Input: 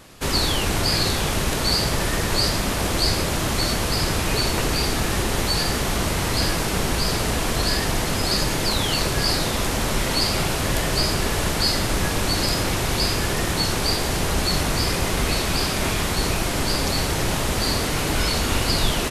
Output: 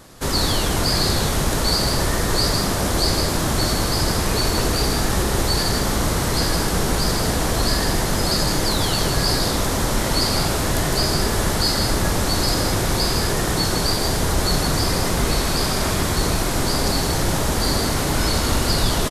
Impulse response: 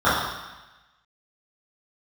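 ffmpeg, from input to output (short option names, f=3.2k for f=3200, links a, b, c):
-filter_complex "[0:a]equalizer=f=2.6k:w=1.9:g=-7,acontrast=78,asplit=2[a][b];[b]aecho=0:1:158:0.531[c];[a][c]amix=inputs=2:normalize=0,volume=-5dB"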